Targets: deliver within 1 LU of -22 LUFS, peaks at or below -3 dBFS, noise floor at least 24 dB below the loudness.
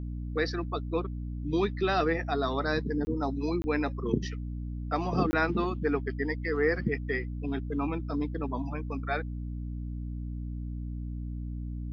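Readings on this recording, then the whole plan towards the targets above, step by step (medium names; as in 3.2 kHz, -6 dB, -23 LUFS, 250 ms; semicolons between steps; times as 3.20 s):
dropouts 3; longest dropout 20 ms; hum 60 Hz; highest harmonic 300 Hz; hum level -33 dBFS; loudness -31.5 LUFS; peak level -11.5 dBFS; loudness target -22.0 LUFS
-> interpolate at 3.05/3.62/5.31 s, 20 ms; hum notches 60/120/180/240/300 Hz; trim +9.5 dB; peak limiter -3 dBFS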